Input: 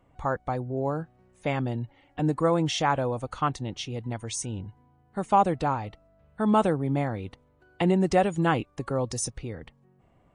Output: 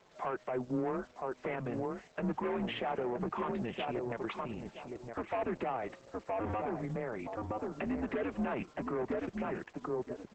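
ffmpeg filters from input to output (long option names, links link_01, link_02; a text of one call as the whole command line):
ffmpeg -i in.wav -filter_complex "[0:a]acontrast=52,asplit=3[link_01][link_02][link_03];[link_01]afade=type=out:start_time=2.63:duration=0.02[link_04];[link_02]tremolo=f=210:d=0.621,afade=type=in:start_time=2.63:duration=0.02,afade=type=out:start_time=3.18:duration=0.02[link_05];[link_03]afade=type=in:start_time=3.18:duration=0.02[link_06];[link_04][link_05][link_06]amix=inputs=3:normalize=0,lowshelf=frequency=310:gain=-7.5,acrusher=bits=8:mode=log:mix=0:aa=0.000001,asplit=3[link_07][link_08][link_09];[link_07]afade=type=out:start_time=6.54:duration=0.02[link_10];[link_08]acompressor=threshold=-36dB:ratio=1.5,afade=type=in:start_time=6.54:duration=0.02,afade=type=out:start_time=8.03:duration=0.02[link_11];[link_09]afade=type=in:start_time=8.03:duration=0.02[link_12];[link_10][link_11][link_12]amix=inputs=3:normalize=0,asplit=2[link_13][link_14];[link_14]adelay=967,lowpass=frequency=1300:poles=1,volume=-7.5dB,asplit=2[link_15][link_16];[link_16]adelay=967,lowpass=frequency=1300:poles=1,volume=0.18,asplit=2[link_17][link_18];[link_18]adelay=967,lowpass=frequency=1300:poles=1,volume=0.18[link_19];[link_13][link_15][link_17][link_19]amix=inputs=4:normalize=0,asoftclip=type=tanh:threshold=-21dB,highpass=frequency=300:width_type=q:width=0.5412,highpass=frequency=300:width_type=q:width=1.307,lowpass=frequency=2700:width_type=q:width=0.5176,lowpass=frequency=2700:width_type=q:width=0.7071,lowpass=frequency=2700:width_type=q:width=1.932,afreqshift=-120,acrusher=bits=9:mix=0:aa=0.000001,alimiter=level_in=2dB:limit=-24dB:level=0:latency=1:release=71,volume=-2dB" -ar 48000 -c:a libopus -b:a 10k out.opus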